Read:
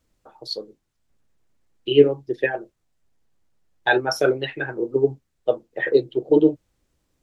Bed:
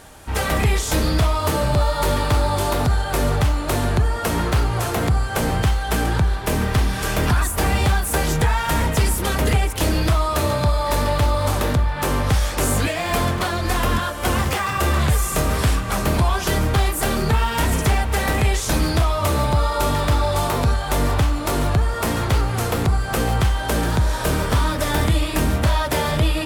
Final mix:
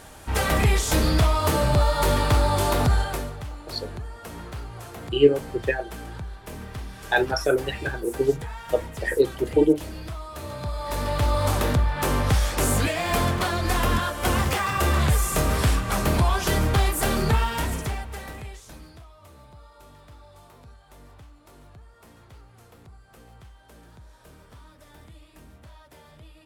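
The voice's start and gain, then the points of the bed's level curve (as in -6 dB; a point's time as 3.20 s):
3.25 s, -2.5 dB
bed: 3.02 s -1.5 dB
3.34 s -17 dB
10.33 s -17 dB
11.37 s -2.5 dB
17.34 s -2.5 dB
19.09 s -30 dB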